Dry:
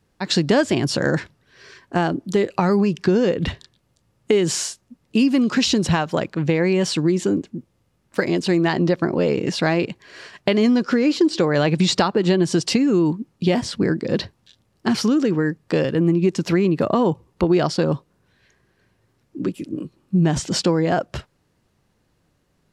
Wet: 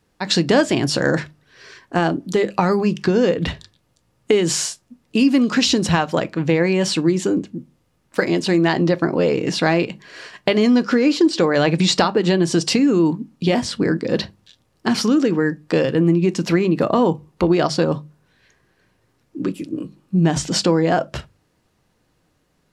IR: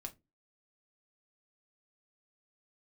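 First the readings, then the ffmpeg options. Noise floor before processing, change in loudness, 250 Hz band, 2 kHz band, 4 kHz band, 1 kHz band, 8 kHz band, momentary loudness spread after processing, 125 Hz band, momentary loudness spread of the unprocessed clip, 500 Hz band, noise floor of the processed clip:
−66 dBFS, +1.5 dB, +1.5 dB, +2.5 dB, +2.5 dB, +2.5 dB, +2.5 dB, 11 LU, +0.5 dB, 9 LU, +1.5 dB, −65 dBFS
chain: -filter_complex "[0:a]bandreject=frequency=50:width_type=h:width=6,bandreject=frequency=100:width_type=h:width=6,bandreject=frequency=150:width_type=h:width=6,bandreject=frequency=200:width_type=h:width=6,asplit=2[link_01][link_02];[1:a]atrim=start_sample=2205,lowshelf=frequency=210:gain=-11[link_03];[link_02][link_03]afir=irnorm=-1:irlink=0,volume=-0.5dB[link_04];[link_01][link_04]amix=inputs=2:normalize=0,volume=-1dB"

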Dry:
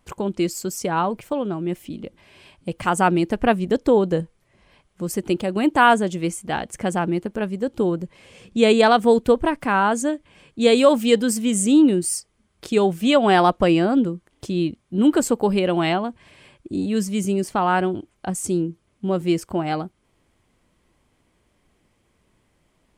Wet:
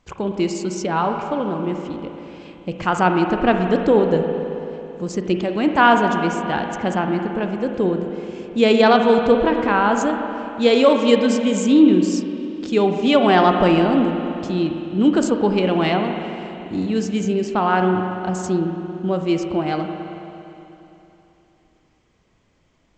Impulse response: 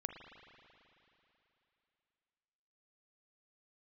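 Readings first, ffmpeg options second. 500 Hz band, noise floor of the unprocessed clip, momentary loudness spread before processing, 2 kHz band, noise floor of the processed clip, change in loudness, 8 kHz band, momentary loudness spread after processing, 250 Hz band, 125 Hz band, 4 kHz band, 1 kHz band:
+2.0 dB, −66 dBFS, 14 LU, +2.0 dB, −61 dBFS, +1.5 dB, −6.5 dB, 14 LU, +2.5 dB, +2.0 dB, +1.5 dB, +2.0 dB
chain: -filter_complex "[1:a]atrim=start_sample=2205[link_01];[0:a][link_01]afir=irnorm=-1:irlink=0,volume=3.5dB" -ar 16000 -c:a g722

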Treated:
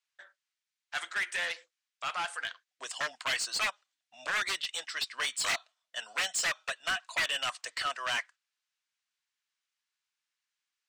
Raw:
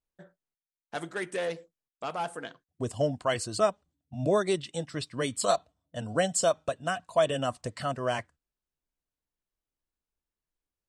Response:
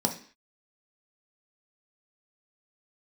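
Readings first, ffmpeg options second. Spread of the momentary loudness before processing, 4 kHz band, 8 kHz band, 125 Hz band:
13 LU, +5.5 dB, −0.5 dB, −24.5 dB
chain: -filter_complex "[0:a]aeval=exprs='0.075*(abs(mod(val(0)/0.075+3,4)-2)-1)':channel_layout=same,asuperpass=centerf=3600:order=4:qfactor=0.54,asplit=2[link_01][link_02];[link_02]highpass=frequency=720:poles=1,volume=17dB,asoftclip=type=tanh:threshold=-21.5dB[link_03];[link_01][link_03]amix=inputs=2:normalize=0,lowpass=frequency=5700:poles=1,volume=-6dB"

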